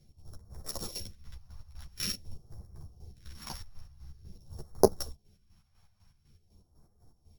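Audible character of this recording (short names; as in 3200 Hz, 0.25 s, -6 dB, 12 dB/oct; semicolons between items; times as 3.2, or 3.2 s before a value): a buzz of ramps at a fixed pitch in blocks of 8 samples; phasing stages 2, 0.47 Hz, lowest notch 330–2700 Hz; chopped level 4 Hz, depth 65%, duty 45%; a shimmering, thickened sound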